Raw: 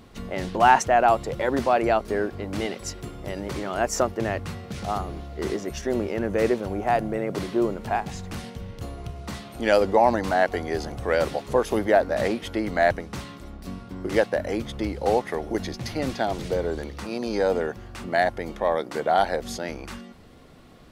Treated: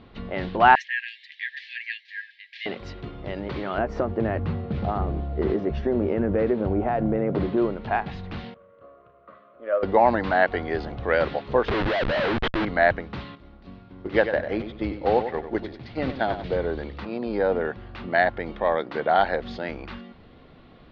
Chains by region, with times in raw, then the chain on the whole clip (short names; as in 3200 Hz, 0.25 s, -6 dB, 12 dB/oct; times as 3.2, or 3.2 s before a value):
0.75–2.66 brick-wall FIR high-pass 1600 Hz + comb 6.2 ms, depth 35%
3.78–7.57 compressor 5:1, threshold -24 dBFS + tilt shelf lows +7 dB, about 1200 Hz + doubler 13 ms -13 dB
8.54–9.83 short-mantissa float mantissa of 2-bit + double band-pass 830 Hz, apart 1 oct + air absorption 230 m
11.68–12.65 HPF 270 Hz + Schmitt trigger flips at -33 dBFS
13.35–16.44 gate -29 dBFS, range -8 dB + short-mantissa float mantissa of 4-bit + feedback echo 95 ms, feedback 32%, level -9.5 dB
17.05–17.65 steep low-pass 5500 Hz 96 dB/oct + high shelf 2000 Hz -7 dB
whole clip: steep low-pass 4100 Hz 36 dB/oct; dynamic EQ 1600 Hz, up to +4 dB, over -38 dBFS, Q 1.7